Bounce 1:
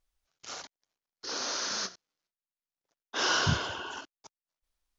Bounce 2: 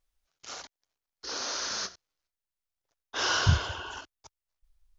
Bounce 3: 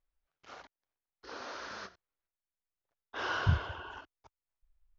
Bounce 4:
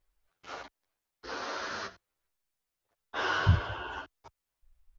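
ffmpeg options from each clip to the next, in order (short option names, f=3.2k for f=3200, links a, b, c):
-af "asubboost=boost=12:cutoff=67"
-af "lowpass=2.3k,volume=-4.5dB"
-filter_complex "[0:a]asplit=2[a][b];[b]acompressor=threshold=-42dB:ratio=6,volume=-0.5dB[c];[a][c]amix=inputs=2:normalize=0,asplit=2[d][e];[e]adelay=10.4,afreqshift=1.2[f];[d][f]amix=inputs=2:normalize=1,volume=5dB"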